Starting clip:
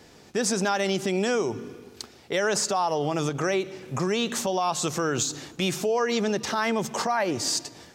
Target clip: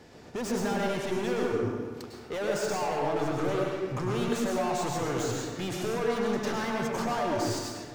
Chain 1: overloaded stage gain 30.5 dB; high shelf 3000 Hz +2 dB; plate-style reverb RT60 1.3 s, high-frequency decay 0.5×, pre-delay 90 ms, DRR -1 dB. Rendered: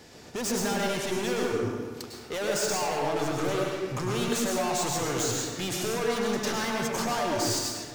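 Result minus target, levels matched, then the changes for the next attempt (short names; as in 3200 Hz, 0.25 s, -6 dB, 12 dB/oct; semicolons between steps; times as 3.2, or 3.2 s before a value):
8000 Hz band +7.0 dB
change: high shelf 3000 Hz -8.5 dB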